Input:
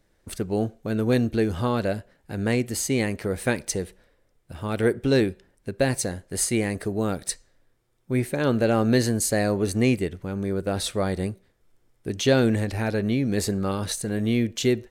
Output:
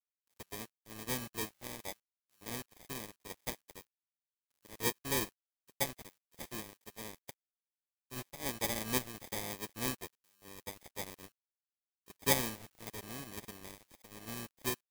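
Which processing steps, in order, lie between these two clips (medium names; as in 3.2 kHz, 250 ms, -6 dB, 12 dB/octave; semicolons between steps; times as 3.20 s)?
sample-rate reducer 1.4 kHz, jitter 0%; pre-emphasis filter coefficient 0.8; word length cut 6-bit, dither none; dynamic bell 2 kHz, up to +3 dB, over -46 dBFS, Q 0.77; upward expansion 2.5:1, over -43 dBFS; trim +1 dB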